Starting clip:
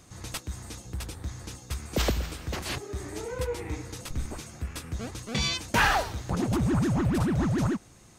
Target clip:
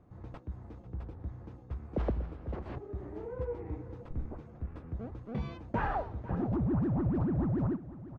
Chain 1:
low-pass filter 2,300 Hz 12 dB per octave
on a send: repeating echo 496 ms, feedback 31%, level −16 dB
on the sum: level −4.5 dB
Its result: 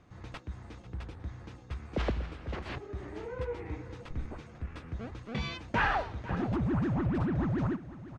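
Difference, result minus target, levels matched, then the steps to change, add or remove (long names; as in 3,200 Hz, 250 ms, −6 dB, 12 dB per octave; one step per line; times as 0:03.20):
2,000 Hz band +10.0 dB
change: low-pass filter 860 Hz 12 dB per octave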